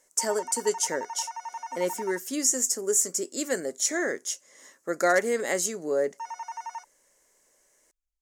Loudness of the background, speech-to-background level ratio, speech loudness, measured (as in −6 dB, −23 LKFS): −38.5 LKFS, 11.5 dB, −27.0 LKFS